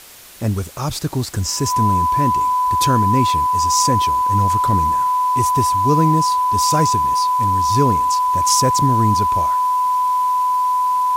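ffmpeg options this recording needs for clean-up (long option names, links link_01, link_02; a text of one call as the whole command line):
ffmpeg -i in.wav -af "bandreject=frequency=1000:width=30,afwtdn=0.01" out.wav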